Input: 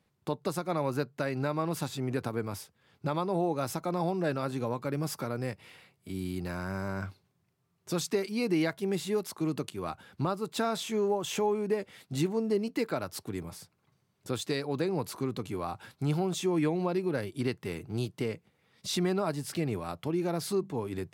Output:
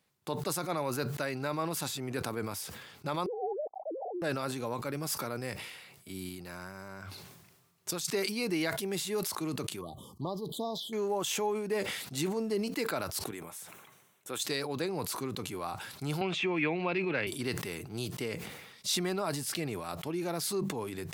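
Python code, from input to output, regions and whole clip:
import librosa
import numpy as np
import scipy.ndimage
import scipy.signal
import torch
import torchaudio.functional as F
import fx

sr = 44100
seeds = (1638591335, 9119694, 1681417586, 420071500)

y = fx.chain(x, sr, fx.sine_speech(),
    fx.steep_lowpass(hz=770.0, slope=96),
    fx.low_shelf(hz=290.0, db=-10.5), at=(3.26, 4.22))
y = fx.chain(y, sr, fx.over_compress(threshold_db=-41.0, ratio=-1.0),
    fx.quant_float(bits=8), at=(6.29, 8.05))
y = fx.chain(y, sr, fx.high_shelf(hz=3700.0, db=-8.5),
    fx.env_phaser(low_hz=530.0, high_hz=1800.0, full_db=-27.0),
    fx.brickwall_bandstop(low_hz=1200.0, high_hz=3000.0), at=(9.81, 10.93))
y = fx.chain(y, sr, fx.highpass(hz=380.0, slope=6),
    fx.peak_eq(hz=4700.0, db=-14.5, octaves=0.4), at=(13.31, 14.4))
y = fx.chain(y, sr, fx.lowpass_res(hz=2500.0, q=3.9),
    fx.band_squash(depth_pct=70), at=(16.21, 17.27))
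y = fx.tilt_eq(y, sr, slope=2.0)
y = fx.sustainer(y, sr, db_per_s=44.0)
y = F.gain(torch.from_numpy(y), -1.5).numpy()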